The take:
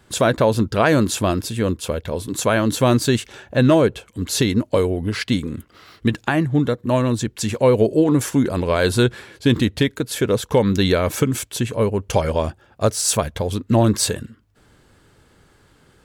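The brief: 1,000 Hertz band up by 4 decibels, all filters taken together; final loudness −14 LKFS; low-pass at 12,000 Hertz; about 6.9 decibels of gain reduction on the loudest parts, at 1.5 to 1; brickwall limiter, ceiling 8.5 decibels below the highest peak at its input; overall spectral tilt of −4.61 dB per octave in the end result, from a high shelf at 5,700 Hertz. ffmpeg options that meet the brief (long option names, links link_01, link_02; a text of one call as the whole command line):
ffmpeg -i in.wav -af "lowpass=12000,equalizer=frequency=1000:width_type=o:gain=5,highshelf=frequency=5700:gain=4,acompressor=threshold=-29dB:ratio=1.5,volume=12dB,alimiter=limit=-2.5dB:level=0:latency=1" out.wav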